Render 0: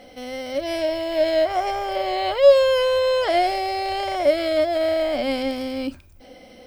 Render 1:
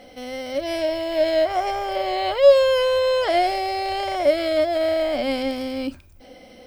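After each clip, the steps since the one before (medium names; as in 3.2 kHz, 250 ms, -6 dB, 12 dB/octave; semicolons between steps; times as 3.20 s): no audible change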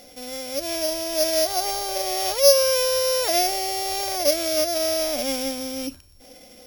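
sorted samples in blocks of 8 samples; treble shelf 3.8 kHz +10 dB; trim -4 dB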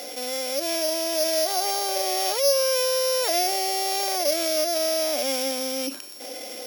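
high-pass 300 Hz 24 dB/octave; level flattener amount 50%; trim -7 dB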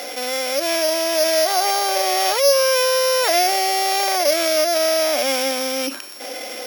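peaking EQ 1.5 kHz +8.5 dB 2.1 oct; trim +3 dB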